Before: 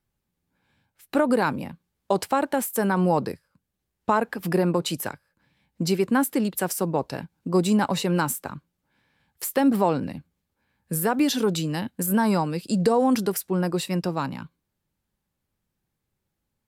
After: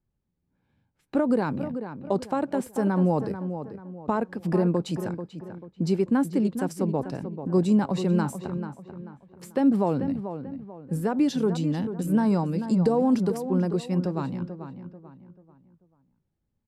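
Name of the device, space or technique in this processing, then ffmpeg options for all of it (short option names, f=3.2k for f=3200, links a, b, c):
through cloth: -filter_complex "[0:a]lowpass=7.7k,equalizer=f=1.1k:w=0.43:g=-5.5,highshelf=f=2.1k:g=-15.5,asplit=2[a][b];[b]adelay=439,lowpass=f=2.5k:p=1,volume=-9.5dB,asplit=2[c][d];[d]adelay=439,lowpass=f=2.5k:p=1,volume=0.37,asplit=2[e][f];[f]adelay=439,lowpass=f=2.5k:p=1,volume=0.37,asplit=2[g][h];[h]adelay=439,lowpass=f=2.5k:p=1,volume=0.37[i];[a][c][e][g][i]amix=inputs=5:normalize=0,adynamicequalizer=threshold=0.00282:dfrequency=4300:dqfactor=0.7:tfrequency=4300:tqfactor=0.7:attack=5:release=100:ratio=0.375:range=2.5:mode=boostabove:tftype=highshelf,volume=1.5dB"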